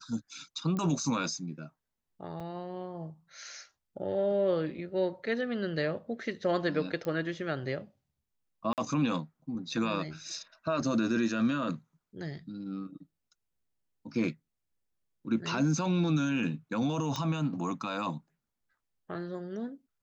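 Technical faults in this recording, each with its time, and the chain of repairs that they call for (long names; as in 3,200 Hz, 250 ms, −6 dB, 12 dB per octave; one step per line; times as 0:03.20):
0:00.77: click −23 dBFS
0:02.40–0:02.41: drop-out 5.2 ms
0:07.05: click −23 dBFS
0:08.73–0:08.78: drop-out 48 ms
0:17.16: click −20 dBFS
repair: click removal
repair the gap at 0:02.40, 5.2 ms
repair the gap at 0:08.73, 48 ms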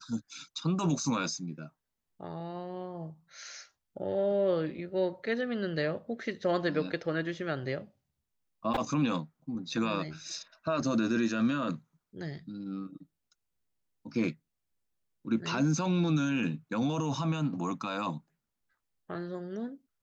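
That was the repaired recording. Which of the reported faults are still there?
0:17.16: click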